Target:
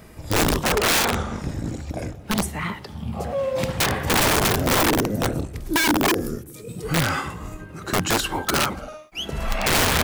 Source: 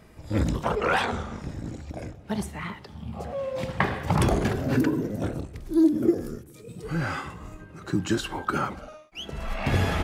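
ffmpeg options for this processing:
-af "highshelf=f=9300:g=9.5,aeval=exprs='(mod(10*val(0)+1,2)-1)/10':c=same,volume=2.11"

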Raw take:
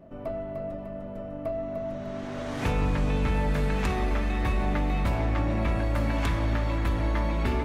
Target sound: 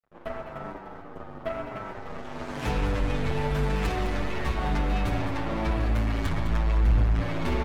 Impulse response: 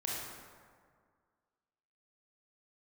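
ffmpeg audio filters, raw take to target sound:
-filter_complex "[0:a]asettb=1/sr,asplit=3[s0][s1][s2];[s0]atrim=end=5.674[s3];[s1]atrim=start=5.67:end=7.2,asetpts=PTS-STARTPTS,afade=t=in:d=0.004:c=qsin,afade=t=out:st=1.526:d=0.004:c=qsin,asubboost=boost=10.5:cutoff=150[s4];[s2]atrim=start=7.196[s5];[s3][s4]acrossfade=d=0.004:c1=hsin:c2=qsin[s6];[s6][s5]acrossfade=d=0.004:c1=qsin:c2=hsin,asoftclip=type=tanh:threshold=0.0944,aeval=exprs='0.0944*(cos(1*acos(clip(val(0)/0.0944,-1,1)))-cos(1*PI/2))+0.00944*(cos(3*acos(clip(val(0)/0.0944,-1,1)))-cos(3*PI/2))+0.0133*(cos(6*acos(clip(val(0)/0.0944,-1,1)))-cos(6*PI/2))+0.0119*(cos(7*acos(clip(val(0)/0.0944,-1,1)))-cos(7*PI/2))':c=same,aeval=exprs='sgn(val(0))*max(abs(val(0))-0.00178,0)':c=same,aecho=1:1:207:0.335,asplit=2[s7][s8];[1:a]atrim=start_sample=2205,lowpass=3900[s9];[s8][s9]afir=irnorm=-1:irlink=0,volume=0.335[s10];[s7][s10]amix=inputs=2:normalize=0,asplit=2[s11][s12];[s12]adelay=8.1,afreqshift=-0.96[s13];[s11][s13]amix=inputs=2:normalize=1,volume=1.19"

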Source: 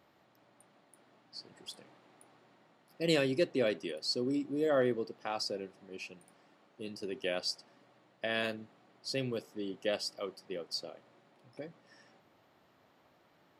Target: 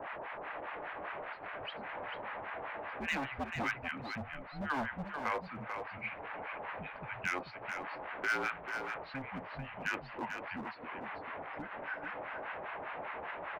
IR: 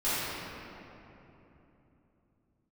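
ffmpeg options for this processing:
-filter_complex "[0:a]aeval=exprs='val(0)+0.5*0.0075*sgn(val(0))':c=same,asplit=2[s0][s1];[s1]acompressor=threshold=0.01:ratio=6,volume=0.944[s2];[s0][s2]amix=inputs=2:normalize=0,highpass=f=450:t=q:w=0.5412,highpass=f=450:t=q:w=1.307,lowpass=f=2600:t=q:w=0.5176,lowpass=f=2600:t=q:w=0.7071,lowpass=f=2600:t=q:w=1.932,afreqshift=-270,acrossover=split=890[s3][s4];[s3]aeval=exprs='val(0)*(1-1/2+1/2*cos(2*PI*5*n/s))':c=same[s5];[s4]aeval=exprs='val(0)*(1-1/2-1/2*cos(2*PI*5*n/s))':c=same[s6];[s5][s6]amix=inputs=2:normalize=0,volume=47.3,asoftclip=hard,volume=0.0211,lowshelf=f=490:t=q:w=1.5:g=-10,aecho=1:1:441:0.422,volume=2.37"

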